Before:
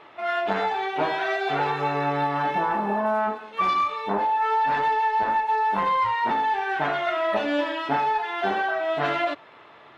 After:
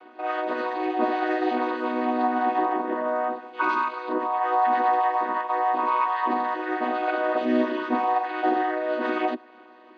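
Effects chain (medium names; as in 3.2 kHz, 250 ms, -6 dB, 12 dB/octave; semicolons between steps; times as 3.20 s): vocoder on a held chord major triad, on B3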